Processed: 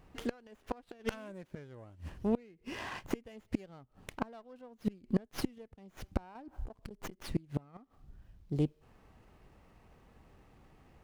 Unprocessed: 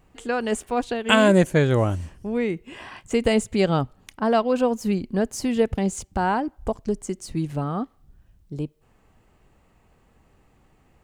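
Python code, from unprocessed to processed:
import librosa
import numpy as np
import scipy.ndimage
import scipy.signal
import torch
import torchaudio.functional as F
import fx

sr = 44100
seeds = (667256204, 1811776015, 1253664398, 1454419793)

y = fx.gate_flip(x, sr, shuts_db=-17.0, range_db=-30)
y = fx.over_compress(y, sr, threshold_db=-40.0, ratio=-1.0, at=(6.35, 7.23))
y = fx.running_max(y, sr, window=5)
y = y * librosa.db_to_amplitude(-1.0)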